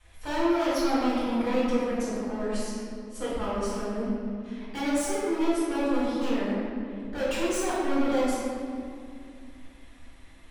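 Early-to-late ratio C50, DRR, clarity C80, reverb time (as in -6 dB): -3.0 dB, -12.0 dB, -1.0 dB, 2.3 s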